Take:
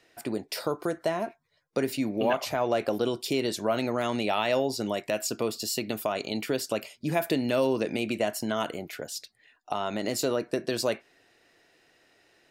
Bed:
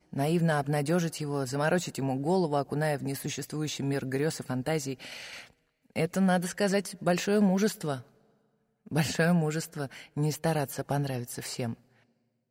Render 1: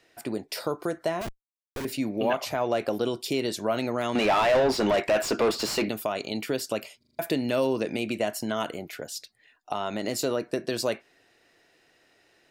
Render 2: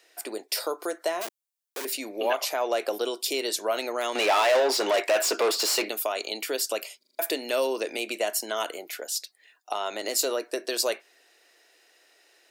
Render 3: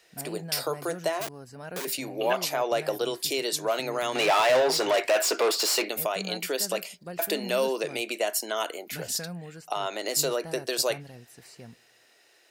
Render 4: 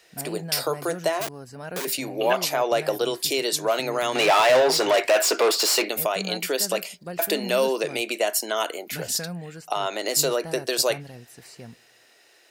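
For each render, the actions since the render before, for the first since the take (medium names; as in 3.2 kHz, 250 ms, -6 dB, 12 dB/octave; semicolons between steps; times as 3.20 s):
1.21–1.85 s: Schmitt trigger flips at -36 dBFS; 4.15–5.89 s: overdrive pedal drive 26 dB, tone 1.6 kHz, clips at -13.5 dBFS; 6.99 s: stutter in place 0.04 s, 5 plays
high-pass 360 Hz 24 dB/octave; treble shelf 4.3 kHz +10 dB
add bed -13.5 dB
trim +4 dB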